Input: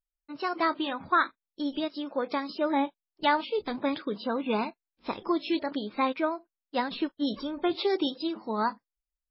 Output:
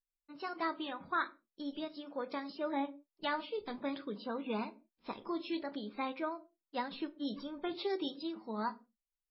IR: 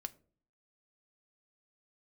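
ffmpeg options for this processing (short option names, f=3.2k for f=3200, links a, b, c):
-filter_complex "[1:a]atrim=start_sample=2205,afade=t=out:st=0.23:d=0.01,atrim=end_sample=10584,asetrate=42336,aresample=44100[a];[0:a][a]afir=irnorm=-1:irlink=0,volume=-6.5dB"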